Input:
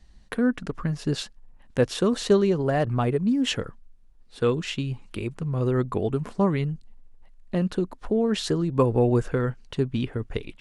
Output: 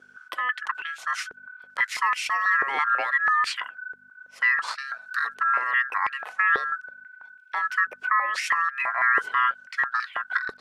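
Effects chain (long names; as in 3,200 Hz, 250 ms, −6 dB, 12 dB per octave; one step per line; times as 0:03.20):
ring modulation 1,500 Hz
mains hum 50 Hz, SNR 21 dB
brickwall limiter −19 dBFS, peak gain reduction 10.5 dB
high-pass on a step sequencer 6.1 Hz 430–2,500 Hz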